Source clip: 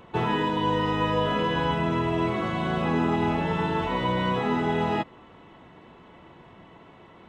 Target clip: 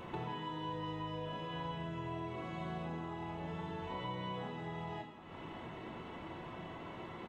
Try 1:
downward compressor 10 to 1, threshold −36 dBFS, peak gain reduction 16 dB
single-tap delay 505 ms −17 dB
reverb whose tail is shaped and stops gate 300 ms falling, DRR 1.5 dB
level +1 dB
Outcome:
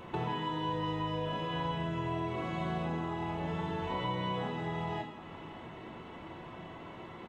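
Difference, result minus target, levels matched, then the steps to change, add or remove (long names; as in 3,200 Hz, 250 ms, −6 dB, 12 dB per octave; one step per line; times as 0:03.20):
downward compressor: peak gain reduction −6.5 dB
change: downward compressor 10 to 1, threshold −43.5 dBFS, peak gain reduction 22.5 dB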